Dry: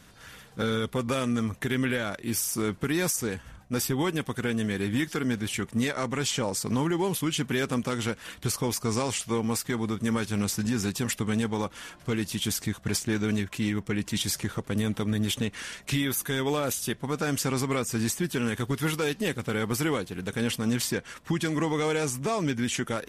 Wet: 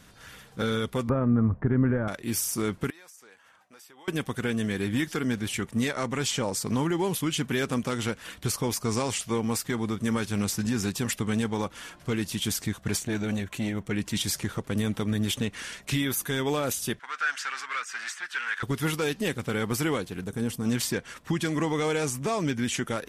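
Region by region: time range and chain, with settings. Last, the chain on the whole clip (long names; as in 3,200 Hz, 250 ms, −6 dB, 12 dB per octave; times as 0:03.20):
0:01.09–0:02.08: low-pass filter 1,400 Hz 24 dB per octave + low-shelf EQ 180 Hz +11.5 dB
0:02.90–0:04.08: high-pass filter 870 Hz + spectral tilt −2 dB per octave + downward compressor 3 to 1, threshold −54 dBFS
0:12.95–0:13.91: notch filter 5,100 Hz, Q 7.1 + saturating transformer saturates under 300 Hz
0:16.99–0:18.63: hard clipping −24.5 dBFS + high-pass with resonance 1,500 Hz, resonance Q 3.6 + high-frequency loss of the air 86 metres
0:20.24–0:20.65: parametric band 2,600 Hz −11.5 dB 2.4 octaves + notch filter 550 Hz, Q 6.1
whole clip: no processing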